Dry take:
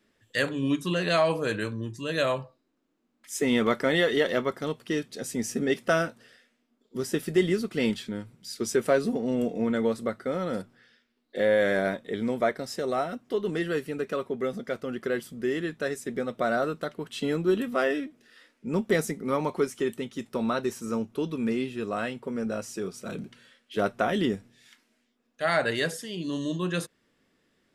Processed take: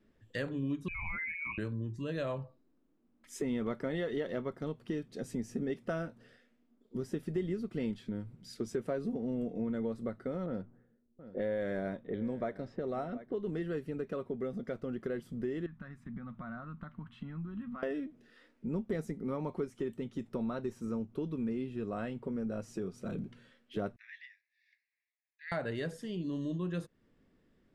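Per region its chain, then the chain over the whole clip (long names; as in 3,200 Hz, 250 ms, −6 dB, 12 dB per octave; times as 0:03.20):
0:00.88–0:01.58: spectral envelope exaggerated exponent 2 + voice inversion scrambler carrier 2,700 Hz + downward compressor 2.5 to 1, threshold −25 dBFS
0:10.46–0:13.39: low-pass that shuts in the quiet parts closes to 430 Hz, open at −22.5 dBFS + single-tap delay 727 ms −20.5 dB
0:15.66–0:17.83: downward compressor 2.5 to 1, threshold −38 dBFS + drawn EQ curve 220 Hz 0 dB, 430 Hz −23 dB, 1,100 Hz +3 dB, 1,900 Hz −3 dB, 3,400 Hz −9 dB, 6,300 Hz −20 dB
0:23.96–0:25.52: Butterworth high-pass 1,600 Hz 72 dB per octave + high-frequency loss of the air 270 metres + phaser with its sweep stopped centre 2,100 Hz, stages 8
whole clip: spectral tilt −3 dB per octave; downward compressor 2.5 to 1, threshold −32 dBFS; level −4.5 dB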